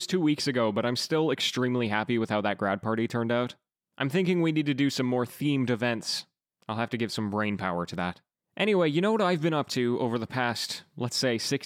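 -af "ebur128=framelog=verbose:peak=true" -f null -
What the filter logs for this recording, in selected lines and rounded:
Integrated loudness:
  I:         -27.7 LUFS
  Threshold: -38.0 LUFS
Loudness range:
  LRA:         2.6 LU
  Threshold: -48.2 LUFS
  LRA low:   -29.8 LUFS
  LRA high:  -27.2 LUFS
True peak:
  Peak:      -11.5 dBFS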